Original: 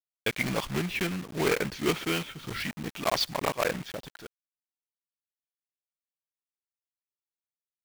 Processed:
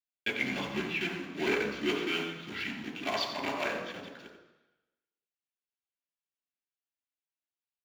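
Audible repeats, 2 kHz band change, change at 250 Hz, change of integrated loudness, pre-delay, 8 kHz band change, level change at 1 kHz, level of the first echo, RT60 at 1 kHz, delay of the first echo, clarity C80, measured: 1, -0.5 dB, -3.0 dB, -3.0 dB, 3 ms, -11.0 dB, -4.0 dB, -9.5 dB, 1.1 s, 89 ms, 7.0 dB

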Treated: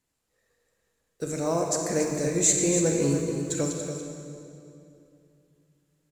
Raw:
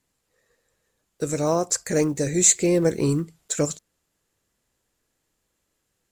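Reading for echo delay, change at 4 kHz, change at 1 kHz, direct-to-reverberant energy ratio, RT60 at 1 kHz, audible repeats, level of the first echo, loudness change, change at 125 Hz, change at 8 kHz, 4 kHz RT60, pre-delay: 284 ms, -3.0 dB, -2.5 dB, 0.5 dB, 2.4 s, 1, -9.0 dB, -3.5 dB, -3.0 dB, -3.5 dB, 2.1 s, 26 ms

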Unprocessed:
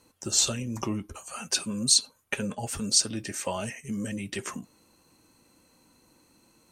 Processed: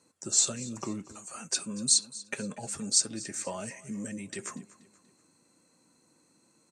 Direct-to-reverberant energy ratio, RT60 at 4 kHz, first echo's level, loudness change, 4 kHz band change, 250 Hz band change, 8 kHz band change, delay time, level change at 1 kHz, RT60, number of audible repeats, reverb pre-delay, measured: no reverb, no reverb, -19.0 dB, -2.5 dB, -5.0 dB, -4.5 dB, -1.0 dB, 240 ms, -6.0 dB, no reverb, 3, no reverb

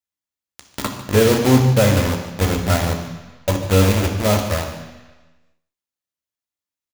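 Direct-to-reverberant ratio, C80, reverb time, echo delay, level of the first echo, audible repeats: 2.5 dB, 8.0 dB, 1.2 s, 148 ms, -14.0 dB, 1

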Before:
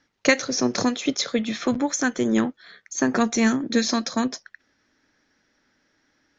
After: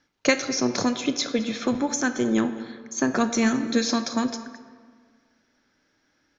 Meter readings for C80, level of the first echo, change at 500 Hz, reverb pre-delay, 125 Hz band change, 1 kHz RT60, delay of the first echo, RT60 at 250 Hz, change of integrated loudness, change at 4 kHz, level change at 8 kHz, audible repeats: 11.5 dB, -20.0 dB, -1.0 dB, 22 ms, -1.0 dB, 1.8 s, 217 ms, 1.8 s, -1.5 dB, -1.5 dB, no reading, 1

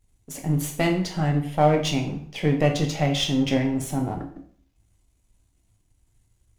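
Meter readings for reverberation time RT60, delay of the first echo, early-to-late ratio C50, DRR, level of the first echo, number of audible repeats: 0.50 s, no echo, 8.5 dB, 3.5 dB, no echo, no echo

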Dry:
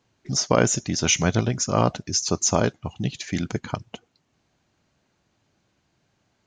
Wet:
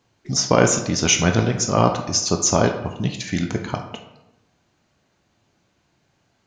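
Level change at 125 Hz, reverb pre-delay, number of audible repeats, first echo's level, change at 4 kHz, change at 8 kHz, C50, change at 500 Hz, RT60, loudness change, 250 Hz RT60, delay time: +3.0 dB, 15 ms, no echo, no echo, +3.5 dB, +3.0 dB, 7.5 dB, +4.0 dB, 0.90 s, +3.5 dB, 1.0 s, no echo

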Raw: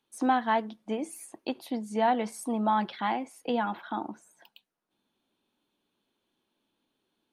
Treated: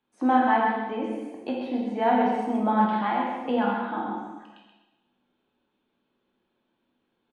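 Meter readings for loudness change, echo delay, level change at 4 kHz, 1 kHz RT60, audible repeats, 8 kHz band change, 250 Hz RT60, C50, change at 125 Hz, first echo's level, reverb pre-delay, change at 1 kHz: +5.0 dB, 130 ms, -0.5 dB, 1.1 s, 1, under -15 dB, 1.1 s, 0.0 dB, no reading, -6.0 dB, 6 ms, +5.0 dB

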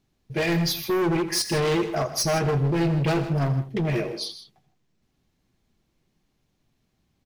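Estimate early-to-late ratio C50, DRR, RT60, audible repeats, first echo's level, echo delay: no reverb, no reverb, no reverb, 3, -15.0 dB, 83 ms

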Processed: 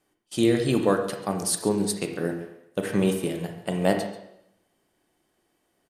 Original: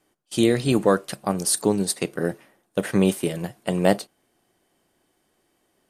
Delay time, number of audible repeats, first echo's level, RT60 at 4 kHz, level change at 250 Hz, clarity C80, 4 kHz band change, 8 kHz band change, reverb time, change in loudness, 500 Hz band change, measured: 138 ms, 1, -17.0 dB, 0.75 s, -2.5 dB, 9.0 dB, -3.5 dB, -4.0 dB, 0.80 s, -2.5 dB, -2.5 dB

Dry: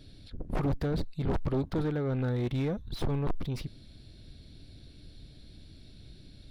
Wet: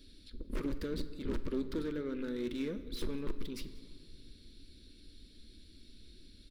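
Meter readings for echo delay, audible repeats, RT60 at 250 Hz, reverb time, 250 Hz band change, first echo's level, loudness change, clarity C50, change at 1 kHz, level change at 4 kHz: 188 ms, 1, 3.0 s, 2.2 s, -4.5 dB, -25.0 dB, -7.0 dB, 13.0 dB, -13.0 dB, -2.0 dB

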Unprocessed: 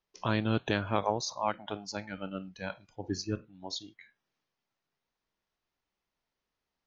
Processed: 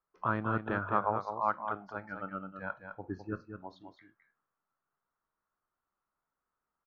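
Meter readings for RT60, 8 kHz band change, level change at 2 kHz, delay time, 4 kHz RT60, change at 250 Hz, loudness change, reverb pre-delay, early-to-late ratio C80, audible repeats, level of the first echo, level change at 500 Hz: no reverb, no reading, 0.0 dB, 209 ms, no reverb, -4.5 dB, -1.0 dB, no reverb, no reverb, 1, -7.5 dB, -3.0 dB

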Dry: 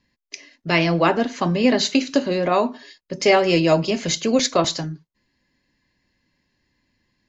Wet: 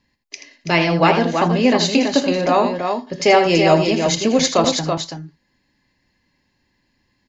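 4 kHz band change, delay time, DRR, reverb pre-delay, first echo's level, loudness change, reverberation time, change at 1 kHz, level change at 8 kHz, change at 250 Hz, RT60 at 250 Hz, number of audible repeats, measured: +3.0 dB, 81 ms, no reverb, no reverb, -9.0 dB, +3.0 dB, no reverb, +5.5 dB, no reading, +3.0 dB, no reverb, 2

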